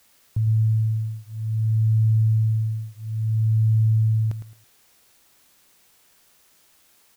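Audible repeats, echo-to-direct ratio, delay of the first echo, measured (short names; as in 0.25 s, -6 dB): 3, -9.5 dB, 0.109 s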